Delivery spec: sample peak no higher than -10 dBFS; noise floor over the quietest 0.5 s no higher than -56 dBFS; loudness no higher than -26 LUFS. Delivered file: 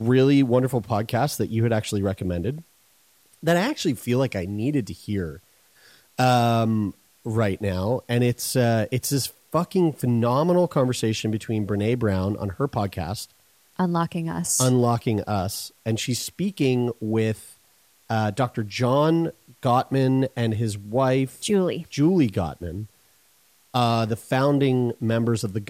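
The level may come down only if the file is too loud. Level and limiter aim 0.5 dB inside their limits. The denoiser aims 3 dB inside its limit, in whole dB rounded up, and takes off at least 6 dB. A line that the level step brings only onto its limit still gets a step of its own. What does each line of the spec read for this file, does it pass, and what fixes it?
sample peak -5.5 dBFS: fail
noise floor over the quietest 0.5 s -60 dBFS: pass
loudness -23.5 LUFS: fail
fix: trim -3 dB; peak limiter -10.5 dBFS

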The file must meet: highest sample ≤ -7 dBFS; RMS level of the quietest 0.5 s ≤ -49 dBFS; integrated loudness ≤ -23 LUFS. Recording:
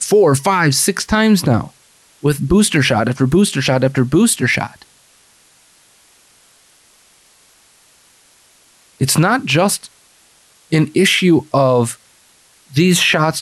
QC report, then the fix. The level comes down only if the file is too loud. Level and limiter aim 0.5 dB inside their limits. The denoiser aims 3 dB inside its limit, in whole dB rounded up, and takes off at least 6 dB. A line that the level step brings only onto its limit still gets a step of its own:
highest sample -4.0 dBFS: fail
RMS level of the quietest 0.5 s -51 dBFS: pass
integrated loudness -14.5 LUFS: fail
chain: trim -9 dB

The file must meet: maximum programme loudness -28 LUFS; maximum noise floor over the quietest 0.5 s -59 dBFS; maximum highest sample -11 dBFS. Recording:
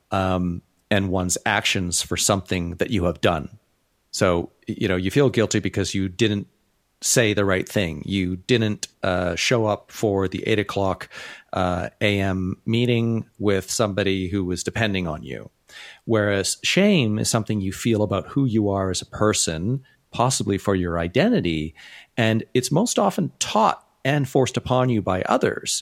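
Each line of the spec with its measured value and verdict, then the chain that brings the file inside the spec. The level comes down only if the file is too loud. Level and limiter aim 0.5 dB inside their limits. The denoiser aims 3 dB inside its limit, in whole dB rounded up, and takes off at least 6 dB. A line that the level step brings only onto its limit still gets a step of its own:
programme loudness -22.0 LUFS: fail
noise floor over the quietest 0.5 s -67 dBFS: pass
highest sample -4.0 dBFS: fail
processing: trim -6.5 dB; peak limiter -11.5 dBFS

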